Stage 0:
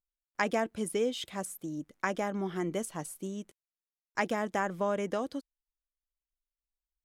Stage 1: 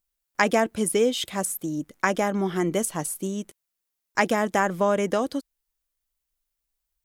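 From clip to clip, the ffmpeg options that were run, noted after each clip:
-af "highshelf=f=8200:g=7.5,volume=2.66"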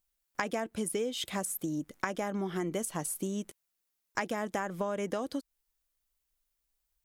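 -af "acompressor=threshold=0.0282:ratio=5"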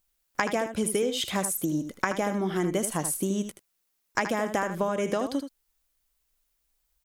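-af "aecho=1:1:78:0.335,volume=2"

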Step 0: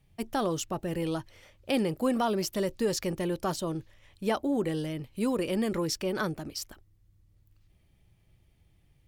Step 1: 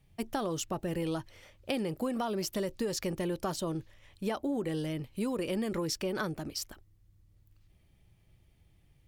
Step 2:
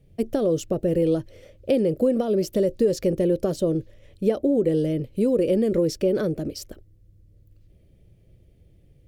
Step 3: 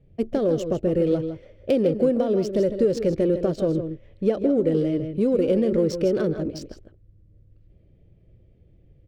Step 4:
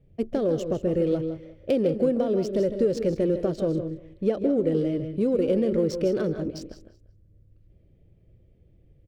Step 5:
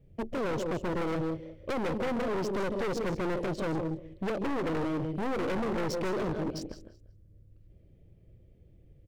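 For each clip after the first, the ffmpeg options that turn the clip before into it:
-af "acompressor=threshold=0.0355:ratio=6"
-af "lowshelf=f=690:t=q:w=3:g=9"
-af "aecho=1:1:138|157:0.133|0.335,adynamicsmooth=sensitivity=6:basefreq=2900"
-af "aecho=1:1:188|376:0.141|0.0311,volume=0.75"
-af "aeval=exprs='0.251*(cos(1*acos(clip(val(0)/0.251,-1,1)))-cos(1*PI/2))+0.0794*(cos(4*acos(clip(val(0)/0.251,-1,1)))-cos(4*PI/2))':c=same,asoftclip=type=hard:threshold=0.0447"

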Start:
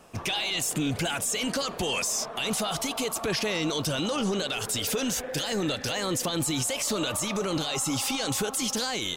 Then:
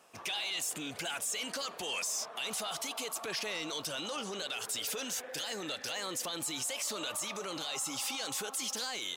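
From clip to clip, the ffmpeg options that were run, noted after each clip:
-af "highpass=f=740:p=1,asoftclip=type=tanh:threshold=0.1,volume=0.531"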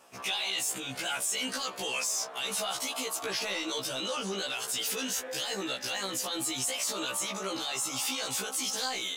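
-af "afftfilt=real='re*1.73*eq(mod(b,3),0)':imag='im*1.73*eq(mod(b,3),0)':win_size=2048:overlap=0.75,volume=2.11"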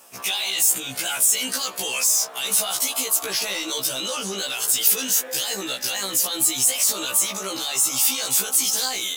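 -af "aemphasis=mode=production:type=50fm,volume=1.58"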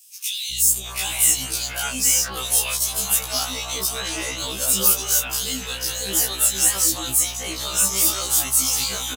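-filter_complex "[0:a]aeval=exprs='val(0)+0.0112*(sin(2*PI*60*n/s)+sin(2*PI*2*60*n/s)/2+sin(2*PI*3*60*n/s)/3+sin(2*PI*4*60*n/s)/4+sin(2*PI*5*60*n/s)/5)':c=same,acrossover=split=450|3100[s0][s1][s2];[s0]adelay=510[s3];[s1]adelay=720[s4];[s3][s4][s2]amix=inputs=3:normalize=0,afftfilt=real='re*1.73*eq(mod(b,3),0)':imag='im*1.73*eq(mod(b,3),0)':win_size=2048:overlap=0.75"

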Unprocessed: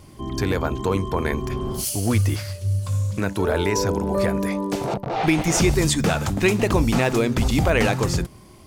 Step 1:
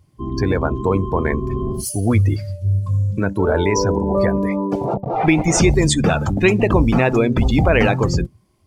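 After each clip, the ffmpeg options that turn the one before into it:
-af "afftdn=nr=21:nf=-28,volume=1.68"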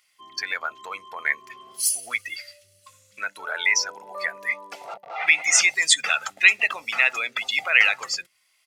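-filter_complex "[0:a]aecho=1:1:1.5:0.38,asplit=2[s0][s1];[s1]acompressor=threshold=0.0794:ratio=6,volume=0.891[s2];[s0][s2]amix=inputs=2:normalize=0,highpass=f=2100:t=q:w=1.8,volume=0.891"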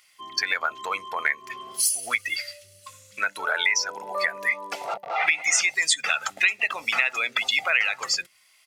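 -af "acompressor=threshold=0.0447:ratio=4,volume=2.11"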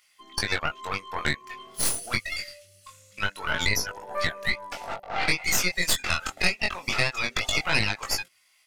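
-filter_complex "[0:a]asplit=2[s0][s1];[s1]asoftclip=type=tanh:threshold=0.126,volume=0.282[s2];[s0][s2]amix=inputs=2:normalize=0,aeval=exprs='0.531*(cos(1*acos(clip(val(0)/0.531,-1,1)))-cos(1*PI/2))+0.211*(cos(4*acos(clip(val(0)/0.531,-1,1)))-cos(4*PI/2))':c=same,flanger=delay=18.5:depth=4.3:speed=0.24,volume=0.708"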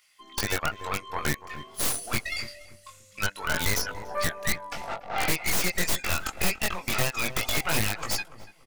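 -filter_complex "[0:a]acrossover=split=1200[s0][s1];[s1]aeval=exprs='(mod(11.2*val(0)+1,2)-1)/11.2':c=same[s2];[s0][s2]amix=inputs=2:normalize=0,asplit=2[s3][s4];[s4]adelay=288,lowpass=f=1200:p=1,volume=0.224,asplit=2[s5][s6];[s6]adelay=288,lowpass=f=1200:p=1,volume=0.31,asplit=2[s7][s8];[s8]adelay=288,lowpass=f=1200:p=1,volume=0.31[s9];[s3][s5][s7][s9]amix=inputs=4:normalize=0"

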